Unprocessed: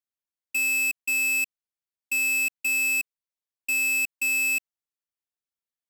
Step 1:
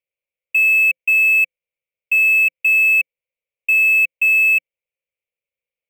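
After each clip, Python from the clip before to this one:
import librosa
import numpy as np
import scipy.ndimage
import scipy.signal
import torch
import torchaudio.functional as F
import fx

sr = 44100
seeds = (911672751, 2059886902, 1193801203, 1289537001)

y = fx.curve_eq(x, sr, hz=(170.0, 290.0, 520.0, 740.0, 1600.0, 2300.0, 4800.0, 14000.0), db=(0, -17, 14, -6, -13, 13, -20, -6))
y = y * librosa.db_to_amplitude(4.0)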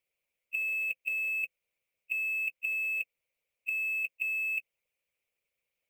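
y = fx.hpss(x, sr, part='harmonic', gain_db=-10)
y = fx.over_compress(y, sr, threshold_db=-29.0, ratio=-0.5)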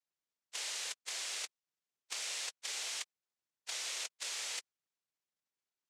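y = fx.noise_vocoder(x, sr, seeds[0], bands=3)
y = y * librosa.db_to_amplitude(-8.5)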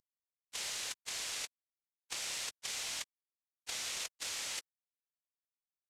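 y = fx.cvsd(x, sr, bps=64000)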